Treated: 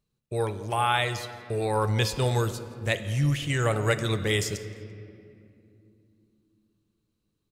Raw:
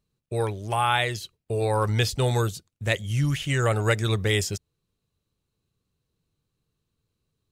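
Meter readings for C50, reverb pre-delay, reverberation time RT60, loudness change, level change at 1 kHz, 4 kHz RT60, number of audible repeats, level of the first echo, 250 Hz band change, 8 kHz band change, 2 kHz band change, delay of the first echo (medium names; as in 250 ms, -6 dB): 11.0 dB, 4 ms, 2.6 s, -2.0 dB, -1.5 dB, 1.5 s, 1, -22.0 dB, -0.5 dB, -2.0 dB, -1.5 dB, 170 ms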